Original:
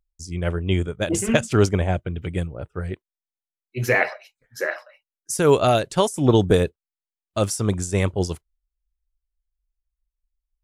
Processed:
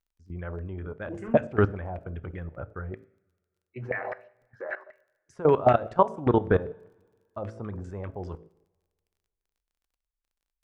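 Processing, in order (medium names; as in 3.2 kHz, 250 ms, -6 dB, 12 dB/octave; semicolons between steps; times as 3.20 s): de-hum 55.17 Hz, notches 12; level held to a coarse grid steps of 17 dB; LFO low-pass saw down 5.1 Hz 700–2000 Hz; crackle 28 per s -59 dBFS; two-slope reverb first 0.56 s, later 1.9 s, from -18 dB, DRR 16.5 dB; trim -2 dB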